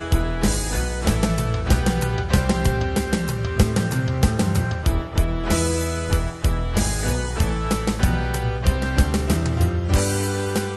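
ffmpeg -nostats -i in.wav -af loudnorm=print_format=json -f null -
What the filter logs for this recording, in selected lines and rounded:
"input_i" : "-22.0",
"input_tp" : "-3.4",
"input_lra" : "1.1",
"input_thresh" : "-32.0",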